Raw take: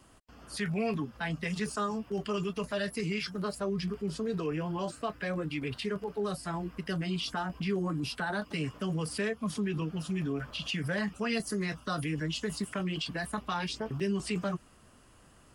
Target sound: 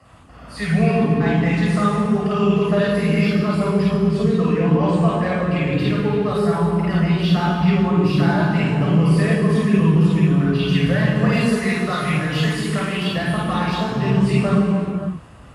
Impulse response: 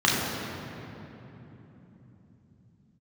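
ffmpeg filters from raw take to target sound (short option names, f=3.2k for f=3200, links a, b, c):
-filter_complex "[0:a]asettb=1/sr,asplit=3[a][b][c];[a]atrim=end=11.324[d];[b]atrim=start=11.32:end=13.03,asetpts=PTS-STARTPTS,afade=t=in:d=0.004:c=qsin,afade=t=out:st=1.706:d=0.004:c=qsin,tiltshelf=f=730:g=-6[e];[c]atrim=start=13.026[f];[d][e]acrossfade=d=0.004:c1=hsin:c2=qsin[g];[g][f]acrossfade=d=0.004:c1=qsin:c2=hsin,acrossover=split=690[h][i];[i]asoftclip=type=tanh:threshold=-33.5dB[j];[h][j]amix=inputs=2:normalize=0[k];[1:a]atrim=start_sample=2205,afade=t=out:st=0.44:d=0.01,atrim=end_sample=19845,asetrate=27342,aresample=44100[l];[k][l]afir=irnorm=-1:irlink=0,volume=-7dB"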